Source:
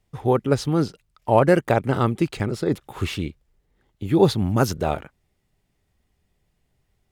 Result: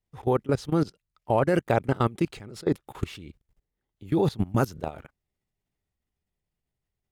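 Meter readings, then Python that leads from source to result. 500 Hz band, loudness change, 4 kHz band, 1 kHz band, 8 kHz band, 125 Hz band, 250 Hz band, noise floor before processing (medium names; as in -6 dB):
-5.5 dB, -5.0 dB, -9.0 dB, -5.5 dB, -9.5 dB, -5.0 dB, -5.0 dB, -71 dBFS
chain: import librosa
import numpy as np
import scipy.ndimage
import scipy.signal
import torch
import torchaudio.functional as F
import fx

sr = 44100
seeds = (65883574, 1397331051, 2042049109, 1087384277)

y = fx.level_steps(x, sr, step_db=21)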